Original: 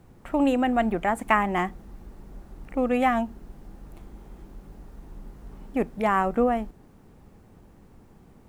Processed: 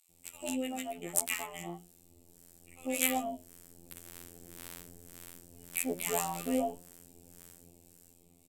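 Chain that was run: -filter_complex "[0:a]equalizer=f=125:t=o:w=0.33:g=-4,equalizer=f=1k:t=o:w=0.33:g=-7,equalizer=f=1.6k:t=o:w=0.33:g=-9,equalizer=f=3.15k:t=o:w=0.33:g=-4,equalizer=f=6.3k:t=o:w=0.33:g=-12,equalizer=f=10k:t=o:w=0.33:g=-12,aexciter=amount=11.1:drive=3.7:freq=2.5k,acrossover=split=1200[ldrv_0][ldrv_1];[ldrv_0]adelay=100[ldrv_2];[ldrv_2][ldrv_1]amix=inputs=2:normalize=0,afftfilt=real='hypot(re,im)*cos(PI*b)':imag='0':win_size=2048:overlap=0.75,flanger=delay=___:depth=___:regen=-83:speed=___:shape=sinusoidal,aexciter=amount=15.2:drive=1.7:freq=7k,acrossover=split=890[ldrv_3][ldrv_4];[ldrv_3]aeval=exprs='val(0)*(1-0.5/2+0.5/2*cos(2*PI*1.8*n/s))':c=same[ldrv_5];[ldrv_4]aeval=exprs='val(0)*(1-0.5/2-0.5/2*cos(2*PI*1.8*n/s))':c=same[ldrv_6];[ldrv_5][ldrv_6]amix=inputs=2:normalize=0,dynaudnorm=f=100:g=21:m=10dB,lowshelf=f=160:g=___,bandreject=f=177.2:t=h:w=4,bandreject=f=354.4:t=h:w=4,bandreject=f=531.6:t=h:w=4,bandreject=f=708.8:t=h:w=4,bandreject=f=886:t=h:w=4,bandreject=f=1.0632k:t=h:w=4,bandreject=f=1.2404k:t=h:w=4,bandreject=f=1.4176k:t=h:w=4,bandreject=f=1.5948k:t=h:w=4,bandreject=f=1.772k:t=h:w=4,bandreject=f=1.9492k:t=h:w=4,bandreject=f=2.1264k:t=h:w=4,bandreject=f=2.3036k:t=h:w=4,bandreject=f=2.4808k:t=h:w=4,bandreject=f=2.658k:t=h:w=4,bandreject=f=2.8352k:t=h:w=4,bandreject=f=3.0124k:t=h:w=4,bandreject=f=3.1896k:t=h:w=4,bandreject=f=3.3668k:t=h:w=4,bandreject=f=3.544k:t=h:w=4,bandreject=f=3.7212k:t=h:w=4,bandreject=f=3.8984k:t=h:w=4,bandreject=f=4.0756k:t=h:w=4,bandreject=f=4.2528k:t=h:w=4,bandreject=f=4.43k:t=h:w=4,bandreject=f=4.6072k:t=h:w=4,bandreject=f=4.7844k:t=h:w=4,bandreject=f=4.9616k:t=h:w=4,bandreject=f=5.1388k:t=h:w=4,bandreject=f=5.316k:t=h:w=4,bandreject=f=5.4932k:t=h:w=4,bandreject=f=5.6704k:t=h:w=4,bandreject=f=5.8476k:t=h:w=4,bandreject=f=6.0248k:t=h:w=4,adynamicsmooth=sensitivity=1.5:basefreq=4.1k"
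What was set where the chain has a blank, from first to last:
4.1, 4.7, 1.6, -6.5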